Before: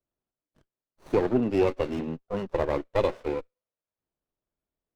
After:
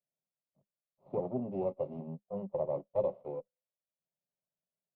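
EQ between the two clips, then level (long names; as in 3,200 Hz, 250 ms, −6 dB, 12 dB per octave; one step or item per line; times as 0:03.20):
pair of resonant band-passes 320 Hz, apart 1.3 octaves
high-frequency loss of the air 210 metres
phaser with its sweep stopped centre 320 Hz, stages 8
+7.5 dB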